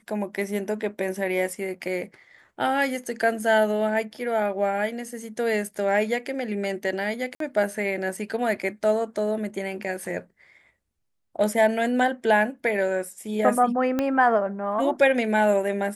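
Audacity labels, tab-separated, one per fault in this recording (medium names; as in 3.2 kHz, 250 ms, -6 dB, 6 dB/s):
7.350000	7.400000	dropout 53 ms
13.990000	13.990000	pop -12 dBFS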